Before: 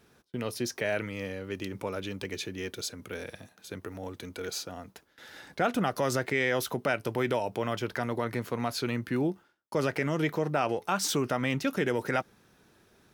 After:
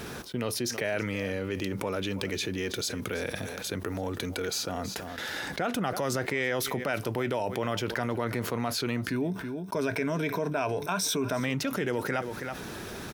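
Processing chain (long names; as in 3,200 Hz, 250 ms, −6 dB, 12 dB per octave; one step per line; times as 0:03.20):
0:09.10–0:11.40: EQ curve with evenly spaced ripples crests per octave 1.6, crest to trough 11 dB
single-tap delay 324 ms −20.5 dB
envelope flattener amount 70%
level −5.5 dB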